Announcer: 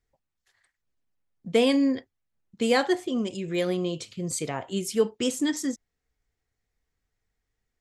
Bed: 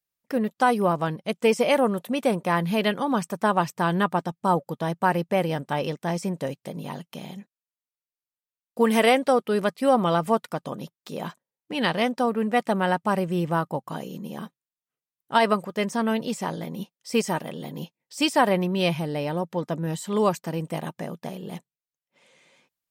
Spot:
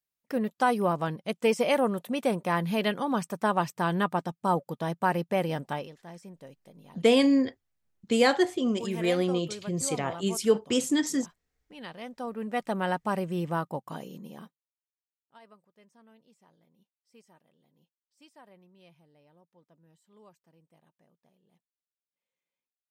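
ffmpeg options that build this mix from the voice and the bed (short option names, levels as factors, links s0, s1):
-filter_complex "[0:a]adelay=5500,volume=1.06[s0];[1:a]volume=2.82,afade=t=out:st=5.69:d=0.2:silence=0.188365,afade=t=in:st=12.01:d=0.83:silence=0.223872,afade=t=out:st=13.92:d=1.07:silence=0.0354813[s1];[s0][s1]amix=inputs=2:normalize=0"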